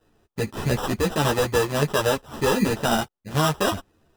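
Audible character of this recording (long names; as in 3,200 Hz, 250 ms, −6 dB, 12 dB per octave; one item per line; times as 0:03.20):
aliases and images of a low sample rate 2,200 Hz, jitter 0%
a shimmering, thickened sound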